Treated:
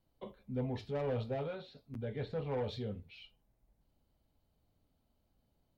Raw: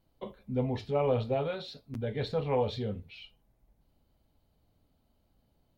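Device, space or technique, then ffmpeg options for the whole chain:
one-band saturation: -filter_complex "[0:a]acrossover=split=390|4500[a][b][c];[b]asoftclip=type=tanh:threshold=-30dB[d];[a][d][c]amix=inputs=3:normalize=0,asettb=1/sr,asplit=3[e][f][g];[e]atrim=end=1.464[h];[f]atrim=start=1.46:end=2.64,asetpts=PTS-STARTPTS,afade=t=in:d=0.004:c=qsin,afade=t=out:st=1.176:d=0.004:c=qsin,acrossover=split=3000[i][j];[j]acompressor=threshold=-60dB:ratio=4:attack=1:release=60[k];[i][k]amix=inputs=2:normalize=0[l];[g]atrim=start=2.636[m];[h][l]acrossfade=d=0.004:c1=hsin:c2=qsin[n];[n][m]acrossfade=d=0.004:c1=qsin:c2=hsin,volume=-5.5dB"

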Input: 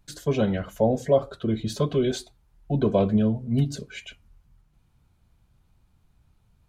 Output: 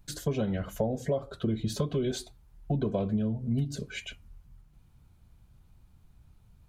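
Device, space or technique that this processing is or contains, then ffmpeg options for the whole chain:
ASMR close-microphone chain: -af "lowshelf=f=240:g=5,acompressor=threshold=-26dB:ratio=6,highshelf=f=10k:g=5"

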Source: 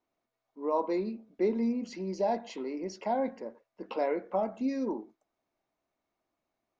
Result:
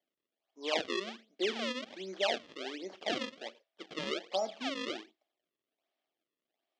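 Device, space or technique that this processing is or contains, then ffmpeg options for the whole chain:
circuit-bent sampling toy: -af "acrusher=samples=33:mix=1:aa=0.000001:lfo=1:lforange=52.8:lforate=1.3,highpass=440,equalizer=f=480:t=q:w=4:g=-4,equalizer=f=980:t=q:w=4:g=-9,equalizer=f=1.4k:t=q:w=4:g=-6,equalizer=f=3.2k:t=q:w=4:g=7,lowpass=f=5.5k:w=0.5412,lowpass=f=5.5k:w=1.3066"

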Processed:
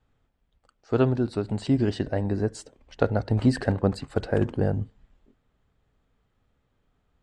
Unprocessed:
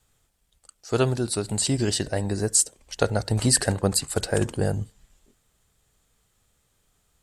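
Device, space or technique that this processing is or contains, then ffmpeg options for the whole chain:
phone in a pocket: -af "lowpass=3.3k,equalizer=f=260:t=o:w=0.31:g=5.5,highshelf=f=2.1k:g=-9"

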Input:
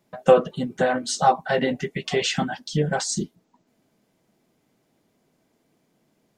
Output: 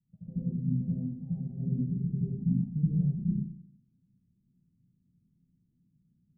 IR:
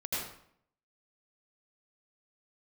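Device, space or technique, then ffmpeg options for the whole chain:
club heard from the street: -filter_complex "[0:a]alimiter=limit=-14dB:level=0:latency=1:release=23,lowpass=f=170:w=0.5412,lowpass=f=170:w=1.3066[a];[1:a]atrim=start_sample=2205[b];[a][b]afir=irnorm=-1:irlink=0"

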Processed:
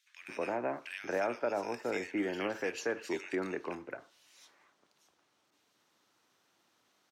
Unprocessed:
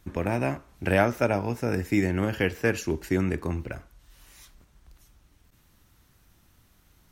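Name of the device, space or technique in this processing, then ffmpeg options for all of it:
DJ mixer with the lows and highs turned down: -filter_complex "[0:a]highpass=f=110:w=0.5412,highpass=f=110:w=1.3066,asettb=1/sr,asplit=3[a][b][c];[a]atrim=end=3.054[d];[b]atrim=start=3.05:end=3.75,asetpts=PTS-STARTPTS,afade=t=in:d=0.004:c=qsin,afade=t=out:st=0.696:d=0.004:c=qsin,equalizer=f=4.3k:w=0.41:g=4.5[e];[c]atrim=start=3.746[f];[d][e]acrossfade=d=0.004:c1=hsin:c2=qsin[g];[g][f]acrossfade=d=0.004:c1=qsin:c2=hsin,acrossover=split=310 7200:gain=0.0794 1 0.158[h][i][j];[h][i][j]amix=inputs=3:normalize=0,alimiter=limit=-18dB:level=0:latency=1:release=71,acrossover=split=2000[k][l];[k]adelay=220[m];[m][l]amix=inputs=2:normalize=0,volume=-3.5dB"

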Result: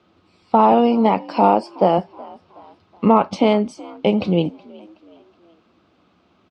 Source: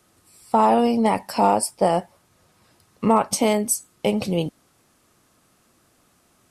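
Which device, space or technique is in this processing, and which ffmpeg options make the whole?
frequency-shifting delay pedal into a guitar cabinet: -filter_complex "[0:a]asettb=1/sr,asplit=3[a][b][c];[a]atrim=end=0.724[d];[b]atrim=start=0.72:end=1.98,asetpts=PTS-STARTPTS,afade=t=in:d=0.004:c=qsin,afade=t=out:st=1.256:d=0.004:c=qsin,highpass=160[e];[c]atrim=start=1.976[f];[d][e]acrossfade=d=0.004:c1=hsin:c2=qsin[g];[g][f]acrossfade=d=0.004:c1=qsin:c2=hsin,asplit=4[h][i][j][k];[i]adelay=372,afreqshift=54,volume=-22.5dB[l];[j]adelay=744,afreqshift=108,volume=-29.4dB[m];[k]adelay=1116,afreqshift=162,volume=-36.4dB[n];[h][l][m][n]amix=inputs=4:normalize=0,highpass=77,equalizer=f=79:t=q:w=4:g=4,equalizer=f=130:t=q:w=4:g=-9,equalizer=f=180:t=q:w=4:g=4,equalizer=f=320:t=q:w=4:g=4,equalizer=f=1.8k:t=q:w=4:g=-8,lowpass=f=3.8k:w=0.5412,lowpass=f=3.8k:w=1.3066,volume=3.5dB"

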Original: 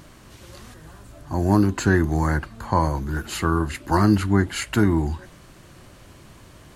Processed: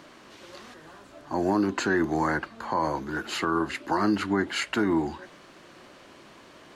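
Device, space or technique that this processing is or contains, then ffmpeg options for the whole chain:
DJ mixer with the lows and highs turned down: -filter_complex "[0:a]acrossover=split=220 5900:gain=0.0794 1 0.2[a][b][c];[a][b][c]amix=inputs=3:normalize=0,alimiter=limit=-16dB:level=0:latency=1:release=93,volume=1dB"

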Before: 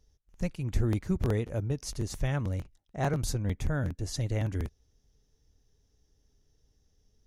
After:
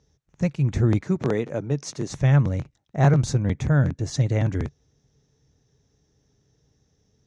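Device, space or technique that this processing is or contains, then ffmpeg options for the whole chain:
car door speaker: -filter_complex "[0:a]asettb=1/sr,asplit=3[a][b][c];[a]atrim=end=1.024[d];[b]atrim=start=1.02:end=2.08,asetpts=PTS-STARTPTS,afade=t=in:d=0.004:c=qsin,afade=t=out:st=1.056:d=0.004:c=qsin,highpass=200[e];[c]atrim=start=2.076[f];[d][e]acrossfade=d=0.004:c1=hsin:c2=qsin[g];[g][f]acrossfade=d=0.004:c1=qsin:c2=hsin,highpass=94,equalizer=f=140:t=q:w=4:g=8,equalizer=f=3k:t=q:w=4:g=-5,equalizer=f=4.8k:t=q:w=4:g=-6,lowpass=f=6.8k:w=0.5412,lowpass=f=6.8k:w=1.3066,volume=8dB"

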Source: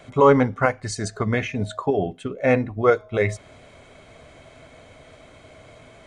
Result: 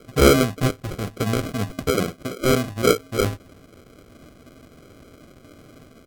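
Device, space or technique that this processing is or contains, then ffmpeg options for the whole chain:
crushed at another speed: -af "asetrate=55125,aresample=44100,acrusher=samples=39:mix=1:aa=0.000001,asetrate=35280,aresample=44100"

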